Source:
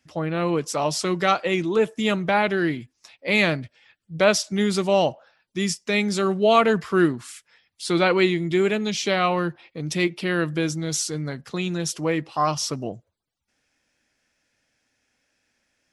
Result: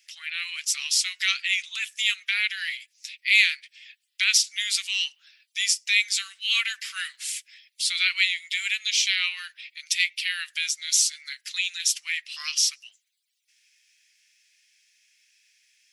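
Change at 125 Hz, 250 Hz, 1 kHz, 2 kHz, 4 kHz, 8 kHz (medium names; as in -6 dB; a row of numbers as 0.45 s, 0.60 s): under -40 dB, under -40 dB, -23.5 dB, +2.5 dB, +6.5 dB, +6.5 dB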